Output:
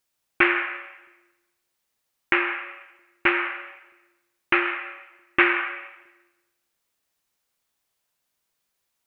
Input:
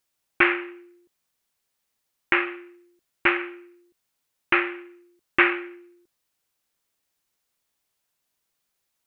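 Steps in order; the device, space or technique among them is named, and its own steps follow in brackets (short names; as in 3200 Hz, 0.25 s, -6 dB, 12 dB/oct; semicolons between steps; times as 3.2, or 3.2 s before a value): filtered reverb send (on a send: HPF 500 Hz 24 dB/oct + LPF 3200 Hz + reverb RT60 1.1 s, pre-delay 72 ms, DRR 5.5 dB)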